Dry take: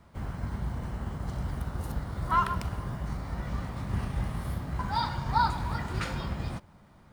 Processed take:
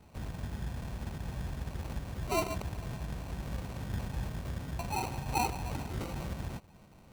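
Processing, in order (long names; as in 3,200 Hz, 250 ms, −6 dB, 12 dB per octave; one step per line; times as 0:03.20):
in parallel at +0.5 dB: downward compressor, threshold −41 dBFS, peak gain reduction 19.5 dB
on the sum: sample-rate reduction 1,700 Hz, jitter 0%
level −7 dB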